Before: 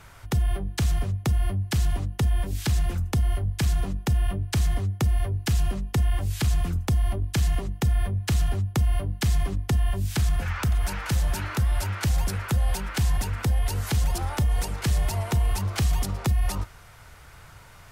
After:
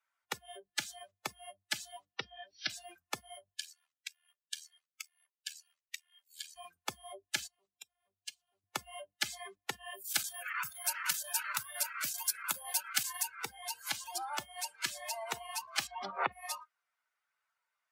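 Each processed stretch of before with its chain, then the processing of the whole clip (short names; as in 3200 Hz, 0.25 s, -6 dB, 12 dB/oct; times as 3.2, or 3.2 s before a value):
2.07–2.7 brick-wall FIR low-pass 6000 Hz + notch 870 Hz, Q 21
3.57–6.56 HPF 1400 Hz + AM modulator 78 Hz, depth 70%
7.47–8.64 bell 1700 Hz -6 dB 0.54 oct + compressor 12:1, threshold -30 dBFS
9.94–13.28 high shelf 8400 Hz +10.5 dB + chopper 10 Hz, depth 60%, duty 90%
15.87–16.32 LPF 2500 Hz + fast leveller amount 70%
whole clip: per-bin expansion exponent 1.5; spectral noise reduction 21 dB; HPF 790 Hz 12 dB/oct; gain +1 dB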